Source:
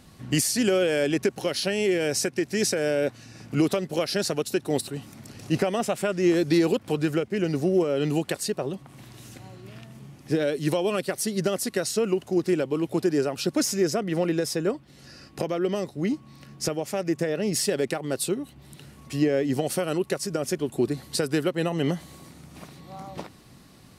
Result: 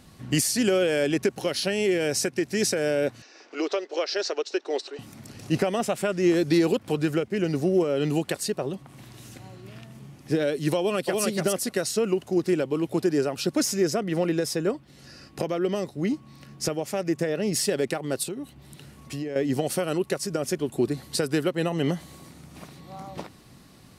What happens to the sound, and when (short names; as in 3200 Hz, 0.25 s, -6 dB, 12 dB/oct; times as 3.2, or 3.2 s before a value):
3.22–4.99 elliptic band-pass 380–5900 Hz
10.78–11.23 echo throw 0.29 s, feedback 10%, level -2 dB
18.23–19.36 compressor 5:1, threshold -29 dBFS